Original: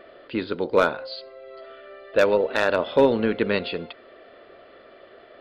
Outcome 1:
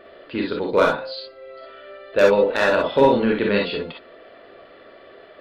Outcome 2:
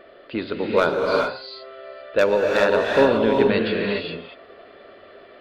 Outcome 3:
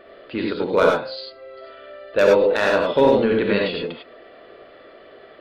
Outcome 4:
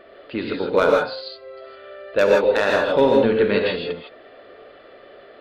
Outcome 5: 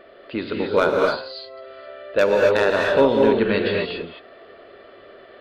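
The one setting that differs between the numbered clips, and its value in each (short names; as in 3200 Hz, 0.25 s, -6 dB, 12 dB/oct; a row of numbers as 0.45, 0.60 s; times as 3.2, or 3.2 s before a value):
non-linear reverb, gate: 80, 440, 120, 180, 290 ms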